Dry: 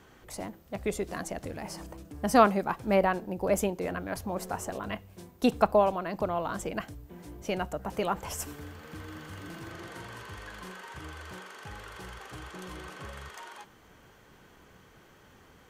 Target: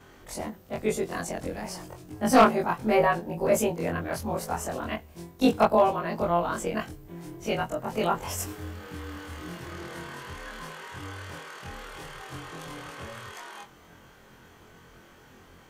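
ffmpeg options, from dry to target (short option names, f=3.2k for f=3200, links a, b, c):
-af "afftfilt=real='re':imag='-im':win_size=2048:overlap=0.75,volume=18dB,asoftclip=hard,volume=-18dB,volume=8dB"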